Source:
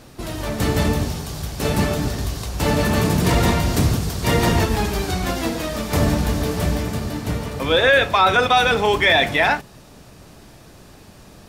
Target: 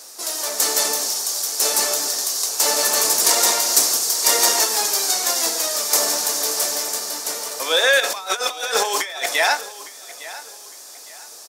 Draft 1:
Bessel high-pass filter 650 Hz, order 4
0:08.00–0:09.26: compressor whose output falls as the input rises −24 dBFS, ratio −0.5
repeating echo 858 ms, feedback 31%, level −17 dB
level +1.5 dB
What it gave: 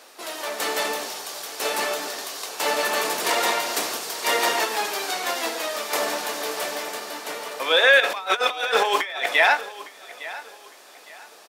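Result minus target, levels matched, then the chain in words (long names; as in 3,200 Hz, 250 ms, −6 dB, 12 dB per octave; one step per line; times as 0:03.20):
8,000 Hz band −9.0 dB
Bessel high-pass filter 650 Hz, order 4
high shelf with overshoot 4,100 Hz +12 dB, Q 1.5
0:08.00–0:09.26: compressor whose output falls as the input rises −24 dBFS, ratio −0.5
repeating echo 858 ms, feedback 31%, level −17 dB
level +1.5 dB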